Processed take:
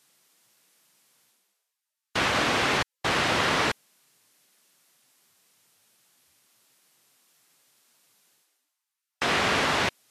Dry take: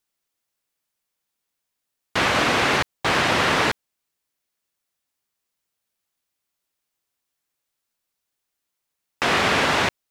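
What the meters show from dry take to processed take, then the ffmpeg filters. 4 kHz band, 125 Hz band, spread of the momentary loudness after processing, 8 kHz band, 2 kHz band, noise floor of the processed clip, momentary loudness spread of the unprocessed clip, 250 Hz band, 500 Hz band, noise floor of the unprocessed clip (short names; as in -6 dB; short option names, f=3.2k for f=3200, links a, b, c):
-3.5 dB, -4.5 dB, 6 LU, -3.0 dB, -4.5 dB, under -85 dBFS, 6 LU, -4.5 dB, -5.0 dB, -81 dBFS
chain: -af "areverse,acompressor=mode=upward:threshold=-41dB:ratio=2.5,areverse,volume=-4.5dB" -ar 44100 -c:a libvorbis -b:a 32k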